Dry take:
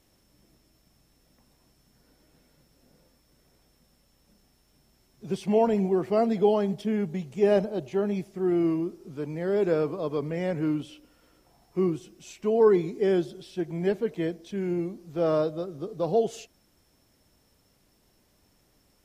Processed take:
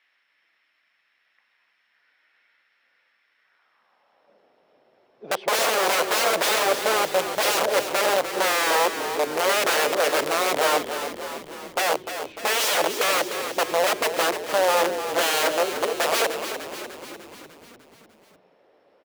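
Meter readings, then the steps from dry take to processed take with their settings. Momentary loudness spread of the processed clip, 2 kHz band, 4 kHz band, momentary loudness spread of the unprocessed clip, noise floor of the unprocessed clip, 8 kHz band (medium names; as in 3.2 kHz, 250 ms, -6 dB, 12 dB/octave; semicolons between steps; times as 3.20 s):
11 LU, +19.5 dB, +21.5 dB, 12 LU, -66 dBFS, no reading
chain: distance through air 380 m; integer overflow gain 26.5 dB; high-pass sweep 1.9 kHz -> 520 Hz, 3.37–4.40 s; on a send: frequency-shifting echo 299 ms, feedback 60%, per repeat -39 Hz, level -9 dB; on the sum: trim +8 dB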